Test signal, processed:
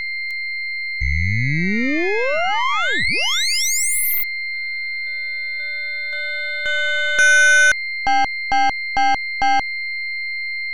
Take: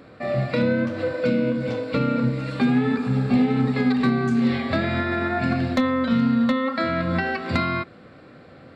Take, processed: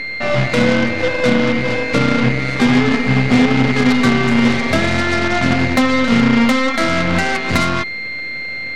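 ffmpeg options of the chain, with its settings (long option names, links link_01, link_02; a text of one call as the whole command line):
ffmpeg -i in.wav -af "aeval=exprs='val(0)+0.0355*sin(2*PI*2100*n/s)':channel_layout=same,aeval=exprs='0.299*(cos(1*acos(clip(val(0)/0.299,-1,1)))-cos(1*PI/2))+0.075*(cos(2*acos(clip(val(0)/0.299,-1,1)))-cos(2*PI/2))+0.0473*(cos(8*acos(clip(val(0)/0.299,-1,1)))-cos(8*PI/2))':channel_layout=same,volume=6dB" out.wav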